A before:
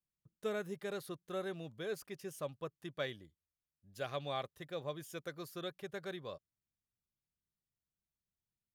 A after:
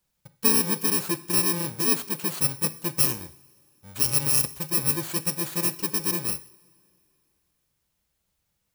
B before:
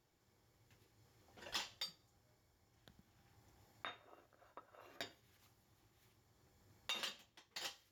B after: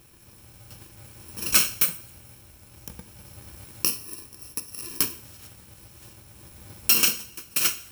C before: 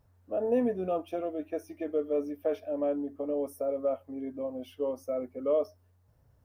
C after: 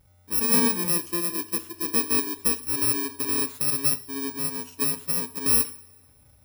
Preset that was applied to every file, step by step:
samples in bit-reversed order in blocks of 64 samples
coupled-rooms reverb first 0.59 s, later 3 s, from −21 dB, DRR 12 dB
loudness normalisation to −23 LKFS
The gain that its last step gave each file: +17.0, +24.5, +6.0 decibels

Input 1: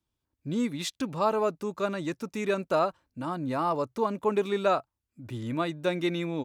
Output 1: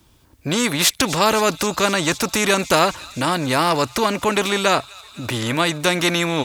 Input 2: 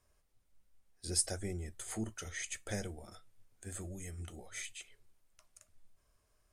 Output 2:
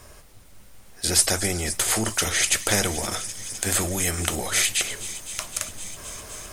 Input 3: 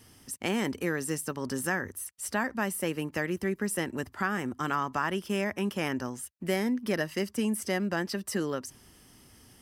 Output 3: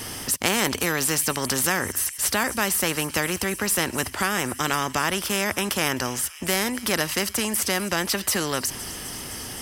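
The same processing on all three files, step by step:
speech leveller within 4 dB 2 s
delay with a high-pass on its return 257 ms, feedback 82%, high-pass 4,200 Hz, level −21.5 dB
every bin compressed towards the loudest bin 2 to 1
normalise the peak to −3 dBFS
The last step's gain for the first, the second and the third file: +9.5, +14.5, +10.5 decibels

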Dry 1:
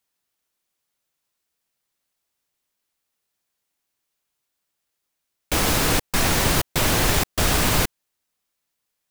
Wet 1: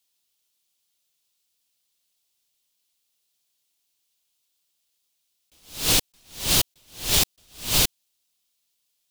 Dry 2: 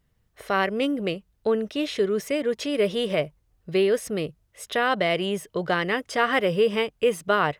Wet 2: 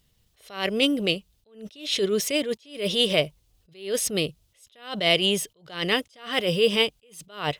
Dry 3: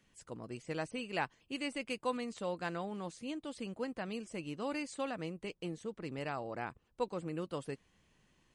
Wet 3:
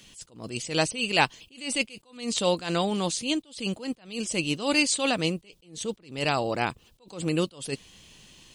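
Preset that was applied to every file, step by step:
high shelf with overshoot 2,400 Hz +9 dB, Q 1.5
level that may rise only so fast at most 140 dB per second
normalise the peak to −6 dBFS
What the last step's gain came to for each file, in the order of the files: −4.0, +1.5, +14.0 decibels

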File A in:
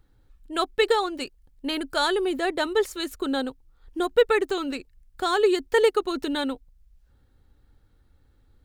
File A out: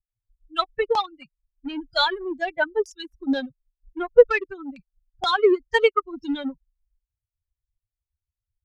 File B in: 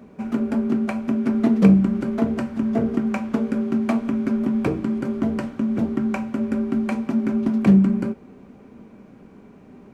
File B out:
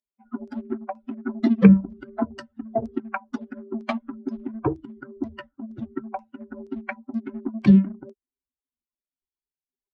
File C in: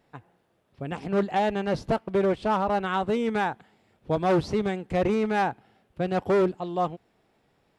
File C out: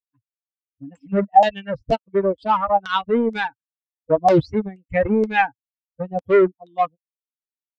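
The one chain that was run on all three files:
spectral dynamics exaggerated over time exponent 3
in parallel at −5 dB: dead-zone distortion −36.5 dBFS
on the sum: auto-filter low-pass saw down 2.1 Hz 600–5,600 Hz
normalise the peak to −1.5 dBFS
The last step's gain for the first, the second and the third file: +3.0, 0.0, +8.0 decibels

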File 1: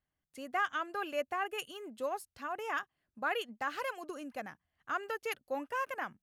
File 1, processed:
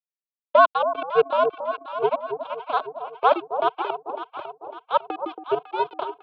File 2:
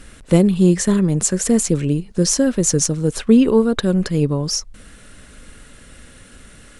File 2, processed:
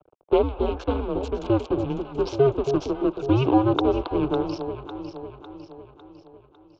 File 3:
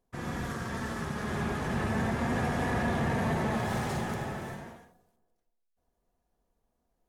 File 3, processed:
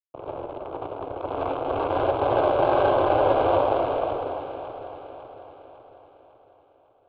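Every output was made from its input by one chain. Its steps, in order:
adaptive Wiener filter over 41 samples
low-pass that shuts in the quiet parts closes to 930 Hz, open at −17.5 dBFS
in parallel at +0.5 dB: brickwall limiter −12 dBFS
on the sum: dead-zone distortion −32 dBFS
phaser with its sweep stopped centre 830 Hz, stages 4
on a send: delay that swaps between a low-pass and a high-pass 276 ms, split 1,000 Hz, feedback 70%, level −7 dB
on the sum: single-sideband voice off tune −130 Hz 340–3,400 Hz
loudness normalisation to −24 LKFS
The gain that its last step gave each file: +19.0, +4.5, +14.0 decibels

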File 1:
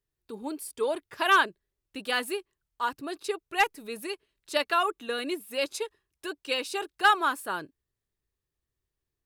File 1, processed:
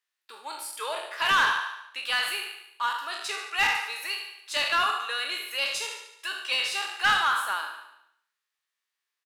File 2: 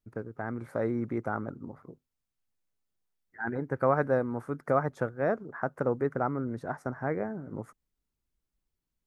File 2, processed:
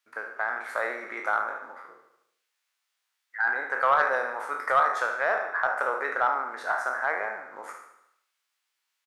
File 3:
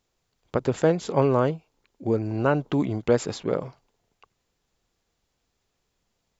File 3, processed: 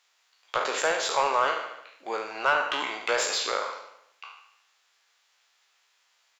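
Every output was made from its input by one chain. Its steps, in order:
peak hold with a decay on every bin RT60 0.59 s
high-pass filter 1,300 Hz 12 dB per octave
dynamic equaliser 1,800 Hz, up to −4 dB, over −41 dBFS, Q 0.95
floating-point word with a short mantissa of 6 bits
on a send: repeating echo 73 ms, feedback 56%, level −11.5 dB
on the sum: mid-hump overdrive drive 16 dB, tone 3,000 Hz, clips at −12 dBFS
loudness normalisation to −27 LKFS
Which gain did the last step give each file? −1.0, +5.5, +3.0 decibels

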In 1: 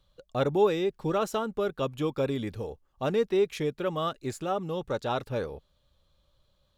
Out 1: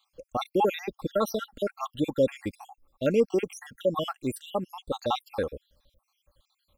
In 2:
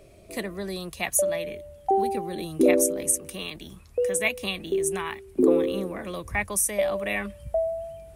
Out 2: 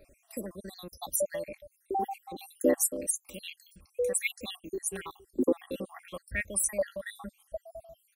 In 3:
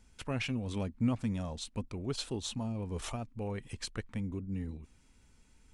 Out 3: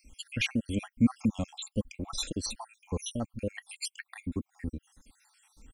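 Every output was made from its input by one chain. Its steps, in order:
time-frequency cells dropped at random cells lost 68%
high-shelf EQ 8,500 Hz +9 dB
comb filter 3.7 ms, depth 38%
normalise the peak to −12 dBFS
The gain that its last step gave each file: +4.0, −5.5, +7.5 decibels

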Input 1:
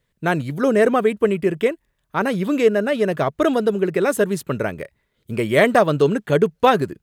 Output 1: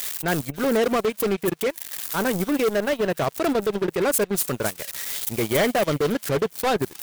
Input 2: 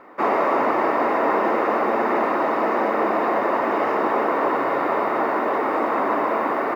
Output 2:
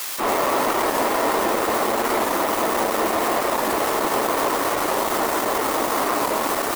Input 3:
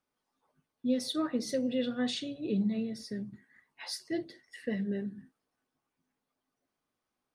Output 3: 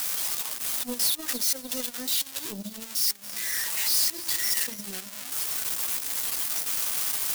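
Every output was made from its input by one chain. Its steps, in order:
spike at every zero crossing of −17 dBFS
gate on every frequency bin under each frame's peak −30 dB strong
gain into a clipping stage and back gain 17 dB
transient designer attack −2 dB, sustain −8 dB
delay with a high-pass on its return 279 ms, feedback 50%, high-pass 3,300 Hz, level −7 dB
power curve on the samples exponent 2
wow of a warped record 45 rpm, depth 100 cents
normalise the peak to −9 dBFS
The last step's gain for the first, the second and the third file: +4.5, +5.5, +4.5 decibels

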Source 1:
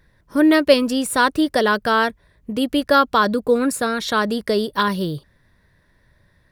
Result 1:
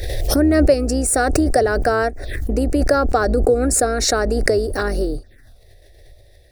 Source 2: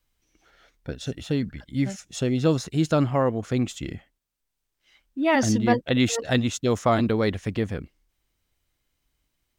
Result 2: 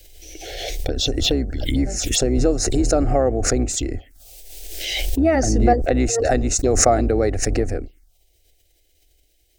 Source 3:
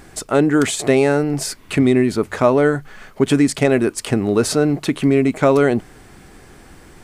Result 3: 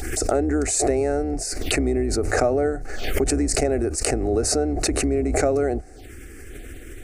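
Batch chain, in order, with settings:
sub-octave generator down 2 octaves, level −2 dB
phaser with its sweep stopped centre 410 Hz, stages 4
downward compressor 2 to 1, threshold −36 dBFS
dynamic equaliser 1,000 Hz, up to +7 dB, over −49 dBFS, Q 1.5
phaser swept by the level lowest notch 190 Hz, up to 3,300 Hz, full sweep at −34 dBFS
parametric band 740 Hz +9.5 dB 0.22 octaves
background raised ahead of every attack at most 30 dB per second
normalise the peak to −1.5 dBFS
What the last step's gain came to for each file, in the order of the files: +12.0, +13.0, +5.5 decibels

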